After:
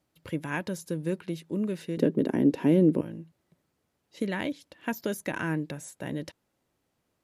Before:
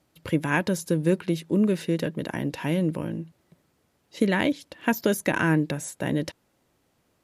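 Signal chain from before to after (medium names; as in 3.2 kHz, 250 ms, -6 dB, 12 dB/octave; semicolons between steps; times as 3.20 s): 1.97–3.01 s: small resonant body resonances 270/380 Hz, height 17 dB, ringing for 30 ms; trim -8 dB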